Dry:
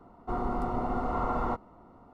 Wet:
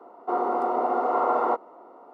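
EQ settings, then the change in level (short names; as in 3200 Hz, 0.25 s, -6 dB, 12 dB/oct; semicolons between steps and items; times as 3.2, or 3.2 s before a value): HPF 390 Hz 24 dB/oct; tilt shelf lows +7 dB, about 1400 Hz; +5.5 dB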